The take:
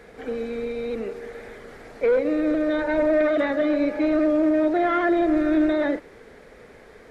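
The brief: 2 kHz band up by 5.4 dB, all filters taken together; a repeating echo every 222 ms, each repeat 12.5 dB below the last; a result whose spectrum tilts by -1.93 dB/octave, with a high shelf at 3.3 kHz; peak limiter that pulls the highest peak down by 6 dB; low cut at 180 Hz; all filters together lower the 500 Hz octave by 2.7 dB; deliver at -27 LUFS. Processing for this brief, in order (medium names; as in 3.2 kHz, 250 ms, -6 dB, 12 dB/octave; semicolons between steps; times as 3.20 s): high-pass 180 Hz; peaking EQ 500 Hz -4 dB; peaking EQ 2 kHz +5 dB; treble shelf 3.3 kHz +6.5 dB; peak limiter -16.5 dBFS; feedback delay 222 ms, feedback 24%, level -12.5 dB; trim -2 dB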